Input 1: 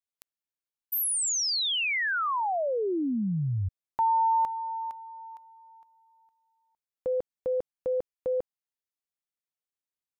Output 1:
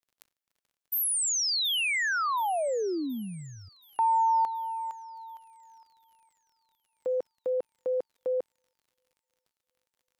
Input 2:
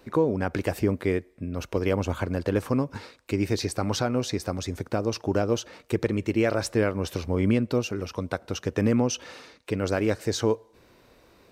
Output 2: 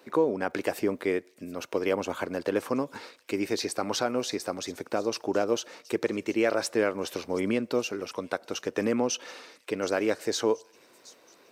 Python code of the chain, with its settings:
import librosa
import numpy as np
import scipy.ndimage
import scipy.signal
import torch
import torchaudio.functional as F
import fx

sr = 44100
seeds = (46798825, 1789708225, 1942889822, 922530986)

p1 = scipy.signal.sosfilt(scipy.signal.butter(2, 300.0, 'highpass', fs=sr, output='sos'), x)
p2 = fx.dmg_crackle(p1, sr, seeds[0], per_s=55.0, level_db=-56.0)
y = p2 + fx.echo_wet_highpass(p2, sr, ms=725, feedback_pct=53, hz=5000.0, wet_db=-15.0, dry=0)